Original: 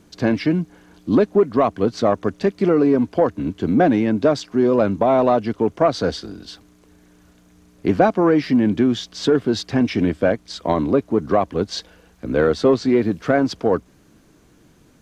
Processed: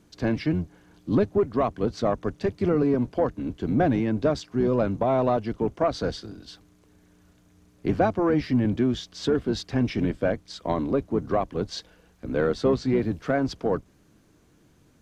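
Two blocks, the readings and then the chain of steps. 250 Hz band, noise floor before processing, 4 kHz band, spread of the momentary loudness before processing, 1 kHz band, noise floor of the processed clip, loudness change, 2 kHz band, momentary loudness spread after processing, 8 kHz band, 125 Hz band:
-6.5 dB, -54 dBFS, -7.0 dB, 8 LU, -7.0 dB, -60 dBFS, -6.5 dB, -7.0 dB, 9 LU, no reading, -2.5 dB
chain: octave divider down 1 oct, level -5 dB; trim -7 dB

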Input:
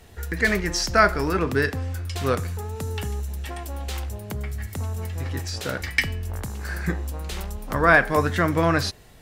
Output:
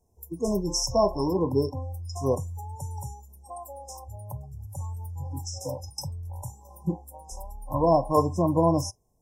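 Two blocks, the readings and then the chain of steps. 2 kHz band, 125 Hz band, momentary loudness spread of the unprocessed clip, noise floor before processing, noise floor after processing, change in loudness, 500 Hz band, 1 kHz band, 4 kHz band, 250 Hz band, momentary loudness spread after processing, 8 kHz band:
under -40 dB, -4.0 dB, 14 LU, -41 dBFS, -62 dBFS, -3.0 dB, -0.5 dB, -4.0 dB, -6.0 dB, -1.0 dB, 19 LU, -1.0 dB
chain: spectral noise reduction 20 dB; FFT band-reject 1.1–5.1 kHz

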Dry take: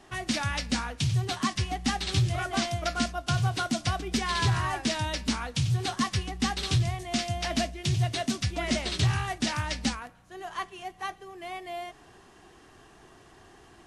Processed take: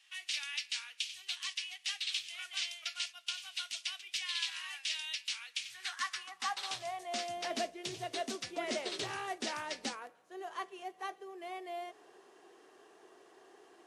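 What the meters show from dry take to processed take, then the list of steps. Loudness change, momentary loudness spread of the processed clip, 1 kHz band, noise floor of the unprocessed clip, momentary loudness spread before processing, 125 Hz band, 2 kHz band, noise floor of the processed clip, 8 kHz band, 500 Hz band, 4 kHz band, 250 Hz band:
-9.0 dB, 8 LU, -9.5 dB, -55 dBFS, 11 LU, -34.0 dB, -7.0 dB, -63 dBFS, -7.0 dB, -7.0 dB, -4.5 dB, -17.5 dB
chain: high-pass sweep 2.7 kHz -> 420 Hz, 5.44–7.35 s; trim -8 dB

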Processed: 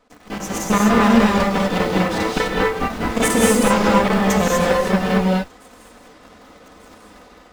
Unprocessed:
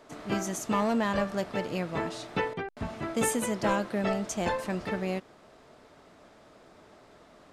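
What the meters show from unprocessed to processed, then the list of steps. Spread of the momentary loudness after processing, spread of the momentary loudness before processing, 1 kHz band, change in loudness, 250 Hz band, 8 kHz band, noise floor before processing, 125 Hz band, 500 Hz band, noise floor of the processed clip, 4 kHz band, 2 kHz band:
9 LU, 7 LU, +13.0 dB, +13.5 dB, +14.0 dB, +11.5 dB, -56 dBFS, +13.5 dB, +12.0 dB, -47 dBFS, +14.5 dB, +13.5 dB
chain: comb filter that takes the minimum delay 4 ms; on a send: feedback echo behind a high-pass 1183 ms, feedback 56%, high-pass 4.5 kHz, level -24 dB; on the sum: level rider gain up to 12 dB; treble shelf 11 kHz -5 dB; square tremolo 10 Hz, duty 80%; in parallel at -6 dB: bit crusher 6-bit; on the sum: gated-style reverb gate 270 ms rising, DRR -2.5 dB; trim -4 dB

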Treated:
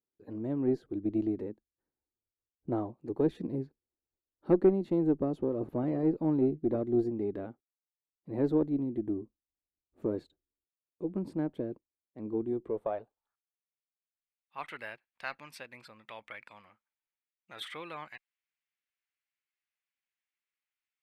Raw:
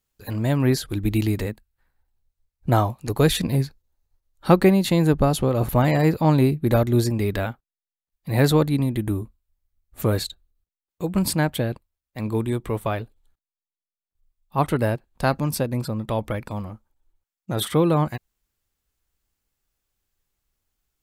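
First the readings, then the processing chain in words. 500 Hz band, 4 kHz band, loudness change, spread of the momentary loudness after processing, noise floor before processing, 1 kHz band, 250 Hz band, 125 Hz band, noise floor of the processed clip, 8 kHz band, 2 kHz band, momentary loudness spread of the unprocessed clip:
-9.0 dB, under -15 dB, -10.0 dB, 19 LU, under -85 dBFS, -17.0 dB, -8.5 dB, -19.0 dB, under -85 dBFS, under -30 dB, -15.0 dB, 14 LU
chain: band-pass sweep 340 Hz -> 2.2 kHz, 12.61–13.68 s; Chebyshev shaper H 4 -25 dB, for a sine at -8.5 dBFS; trim -4 dB

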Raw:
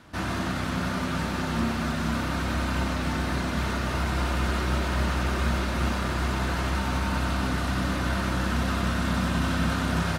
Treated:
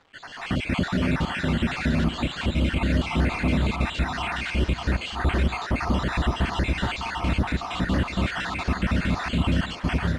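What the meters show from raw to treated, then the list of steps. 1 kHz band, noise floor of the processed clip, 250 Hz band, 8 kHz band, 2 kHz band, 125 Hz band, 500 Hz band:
-0.5 dB, -37 dBFS, +2.0 dB, -5.5 dB, +1.5 dB, +2.0 dB, +1.0 dB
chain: random holes in the spectrogram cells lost 59%; resonant high shelf 1.8 kHz +10 dB, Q 1.5; level rider gain up to 11 dB; peak limiter -10.5 dBFS, peak gain reduction 6.5 dB; word length cut 8-bit, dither none; two-band feedback delay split 440 Hz, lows 577 ms, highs 290 ms, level -13.5 dB; careless resampling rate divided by 4×, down none, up zero stuff; tape spacing loss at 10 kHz 42 dB

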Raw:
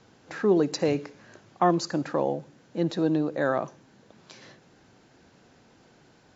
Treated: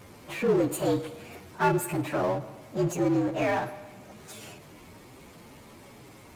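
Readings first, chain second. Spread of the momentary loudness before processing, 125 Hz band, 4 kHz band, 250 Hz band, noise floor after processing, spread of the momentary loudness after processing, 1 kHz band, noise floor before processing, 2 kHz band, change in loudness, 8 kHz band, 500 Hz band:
14 LU, +1.5 dB, -4.0 dB, -1.5 dB, -50 dBFS, 19 LU, -0.5 dB, -59 dBFS, +2.0 dB, -1.5 dB, no reading, -1.5 dB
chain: frequency axis rescaled in octaves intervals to 120%; Schroeder reverb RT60 1.1 s, DRR 18.5 dB; power-law waveshaper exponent 0.7; trim -2.5 dB

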